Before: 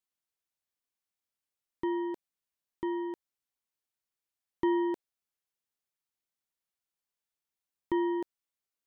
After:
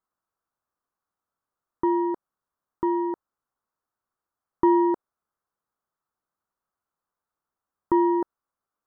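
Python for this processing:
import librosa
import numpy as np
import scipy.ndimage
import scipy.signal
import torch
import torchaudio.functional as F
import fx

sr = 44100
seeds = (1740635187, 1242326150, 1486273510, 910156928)

y = fx.high_shelf_res(x, sr, hz=1800.0, db=-12.5, q=3.0)
y = y * librosa.db_to_amplitude(7.5)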